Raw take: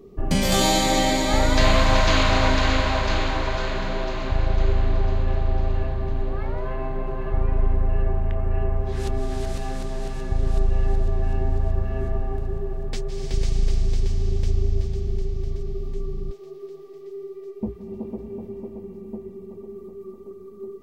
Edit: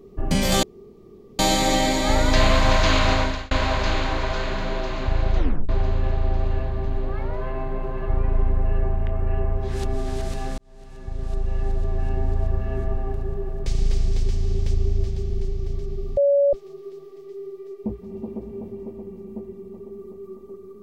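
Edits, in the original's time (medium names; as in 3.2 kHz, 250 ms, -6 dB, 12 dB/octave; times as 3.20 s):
0.63 s: insert room tone 0.76 s
2.36–2.75 s: fade out
4.61 s: tape stop 0.32 s
9.82–11.95 s: fade in equal-power
12.90–13.43 s: delete
15.94–16.30 s: bleep 565 Hz -14 dBFS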